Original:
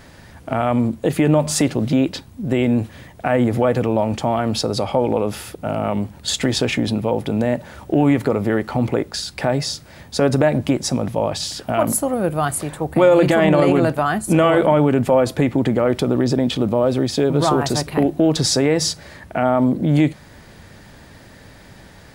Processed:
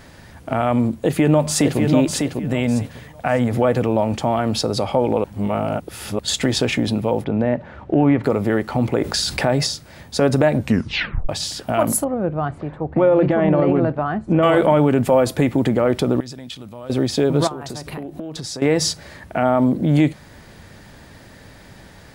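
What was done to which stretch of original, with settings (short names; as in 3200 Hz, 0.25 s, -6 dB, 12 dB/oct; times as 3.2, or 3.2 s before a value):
1–1.79 echo throw 0.6 s, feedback 25%, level -4.5 dB
2.48–3.52 bell 340 Hz -13.5 dB 0.37 oct
5.24–6.19 reverse
7.24–8.24 LPF 2300 Hz
9.01–9.67 fast leveller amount 50%
10.57 tape stop 0.72 s
12.04–14.43 tape spacing loss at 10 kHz 42 dB
15.04–15.69 high shelf 8100 Hz +6 dB
16.2–16.9 passive tone stack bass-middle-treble 5-5-5
17.47–18.62 compressor 10:1, threshold -26 dBFS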